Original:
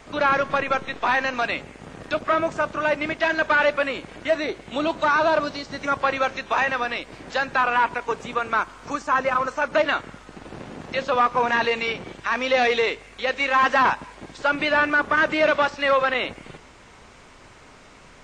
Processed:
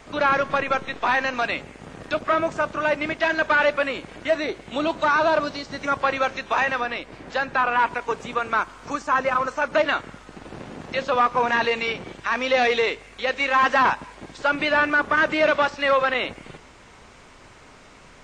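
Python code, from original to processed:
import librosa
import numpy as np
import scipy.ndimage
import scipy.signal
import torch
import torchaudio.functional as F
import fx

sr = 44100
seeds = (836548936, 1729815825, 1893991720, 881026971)

y = fx.high_shelf(x, sr, hz=4000.0, db=-6.5, at=(6.81, 7.79))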